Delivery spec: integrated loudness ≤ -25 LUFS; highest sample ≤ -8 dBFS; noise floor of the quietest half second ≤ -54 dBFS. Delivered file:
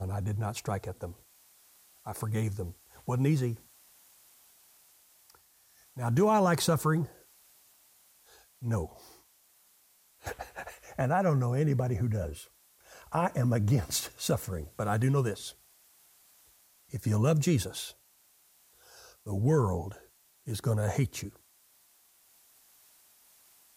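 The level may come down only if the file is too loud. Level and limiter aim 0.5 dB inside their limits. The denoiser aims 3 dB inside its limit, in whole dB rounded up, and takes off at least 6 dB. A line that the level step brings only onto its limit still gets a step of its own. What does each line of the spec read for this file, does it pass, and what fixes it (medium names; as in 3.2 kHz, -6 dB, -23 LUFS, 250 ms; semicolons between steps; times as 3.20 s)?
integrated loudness -30.5 LUFS: pass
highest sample -15.5 dBFS: pass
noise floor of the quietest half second -65 dBFS: pass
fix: none needed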